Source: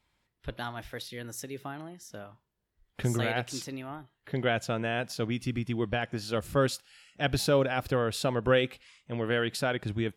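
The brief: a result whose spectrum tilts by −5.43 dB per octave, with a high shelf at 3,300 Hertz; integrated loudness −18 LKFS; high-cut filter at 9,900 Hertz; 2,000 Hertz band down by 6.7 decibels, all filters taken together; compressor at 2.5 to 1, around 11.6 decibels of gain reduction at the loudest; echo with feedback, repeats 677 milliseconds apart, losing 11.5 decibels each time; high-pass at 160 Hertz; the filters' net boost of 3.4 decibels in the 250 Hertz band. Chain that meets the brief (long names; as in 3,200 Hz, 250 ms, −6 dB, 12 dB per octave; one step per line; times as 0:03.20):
high-pass filter 160 Hz
low-pass filter 9,900 Hz
parametric band 250 Hz +5 dB
parametric band 2,000 Hz −8.5 dB
high-shelf EQ 3,300 Hz −3.5 dB
downward compressor 2.5 to 1, threshold −37 dBFS
repeating echo 677 ms, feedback 27%, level −11.5 dB
level +21.5 dB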